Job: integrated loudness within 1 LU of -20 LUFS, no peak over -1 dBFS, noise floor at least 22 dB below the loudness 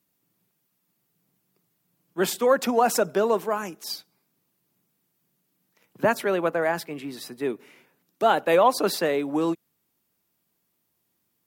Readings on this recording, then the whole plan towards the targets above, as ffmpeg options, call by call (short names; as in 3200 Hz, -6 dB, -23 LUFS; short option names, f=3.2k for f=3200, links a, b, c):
loudness -24.0 LUFS; peak -6.0 dBFS; loudness target -20.0 LUFS
-> -af "volume=4dB"